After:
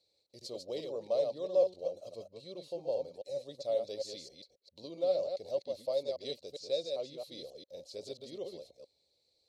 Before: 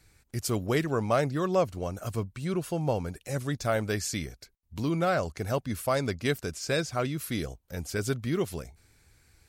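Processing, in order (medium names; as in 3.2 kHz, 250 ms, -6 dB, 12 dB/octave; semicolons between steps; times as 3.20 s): chunks repeated in reverse 134 ms, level -4.5 dB; two resonant band-passes 1.5 kHz, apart 2.9 oct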